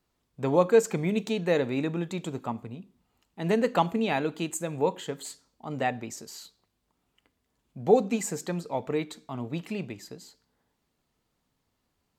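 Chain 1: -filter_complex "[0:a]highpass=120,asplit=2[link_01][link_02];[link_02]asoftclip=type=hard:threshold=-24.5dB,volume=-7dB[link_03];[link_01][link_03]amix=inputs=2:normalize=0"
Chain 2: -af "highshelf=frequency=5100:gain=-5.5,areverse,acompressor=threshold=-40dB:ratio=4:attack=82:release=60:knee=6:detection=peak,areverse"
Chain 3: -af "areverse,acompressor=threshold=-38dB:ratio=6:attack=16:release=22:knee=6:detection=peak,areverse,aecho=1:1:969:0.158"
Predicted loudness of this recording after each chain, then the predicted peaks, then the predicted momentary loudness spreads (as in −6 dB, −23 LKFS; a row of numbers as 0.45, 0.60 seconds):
−26.5, −37.5, −38.0 LKFS; −7.5, −20.0, −19.0 dBFS; 16, 12, 18 LU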